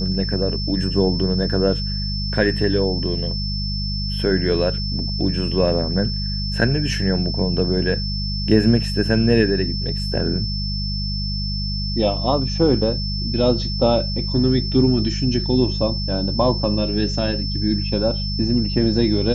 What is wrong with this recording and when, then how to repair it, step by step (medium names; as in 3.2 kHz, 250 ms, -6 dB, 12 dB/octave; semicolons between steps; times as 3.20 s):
hum 50 Hz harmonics 4 -25 dBFS
whine 5.3 kHz -27 dBFS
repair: band-stop 5.3 kHz, Q 30; de-hum 50 Hz, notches 4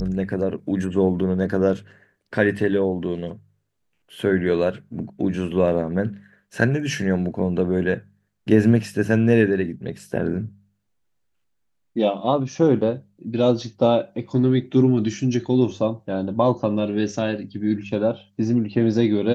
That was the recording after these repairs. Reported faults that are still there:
nothing left